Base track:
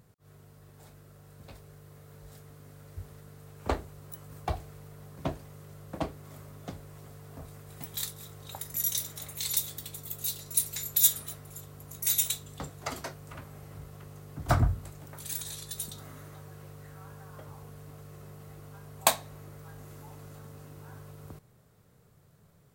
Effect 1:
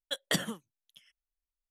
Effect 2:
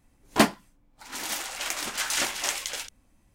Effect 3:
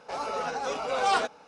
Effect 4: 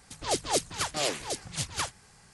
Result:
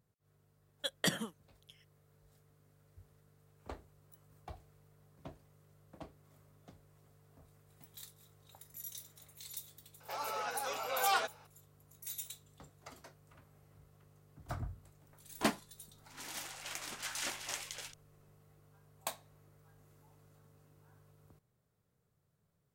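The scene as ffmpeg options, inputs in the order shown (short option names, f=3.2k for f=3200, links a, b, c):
-filter_complex "[0:a]volume=-17dB[a];[3:a]highpass=f=920:p=1[b];[1:a]atrim=end=1.7,asetpts=PTS-STARTPTS,volume=-3dB,afade=t=in:d=0.004:c=hsin,afade=t=out:st=1.696:d=0.004:c=hsin,adelay=730[c];[b]atrim=end=1.47,asetpts=PTS-STARTPTS,volume=-4dB,afade=t=in:d=0.004:c=hsin,afade=t=out:st=1.466:d=0.004:c=hsin,adelay=10000[d];[2:a]atrim=end=3.34,asetpts=PTS-STARTPTS,volume=-12.5dB,afade=t=in:d=0.004:c=hsin,afade=t=out:st=3.336:d=0.004:c=hsin,adelay=15050[e];[a][c][d][e]amix=inputs=4:normalize=0"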